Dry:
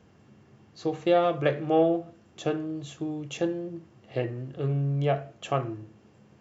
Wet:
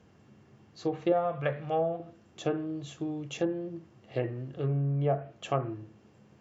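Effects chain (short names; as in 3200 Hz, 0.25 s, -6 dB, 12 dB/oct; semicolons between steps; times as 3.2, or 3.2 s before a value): 1.12–2 bell 340 Hz -15 dB 0.72 oct; treble ducked by the level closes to 1100 Hz, closed at -21 dBFS; gain -2 dB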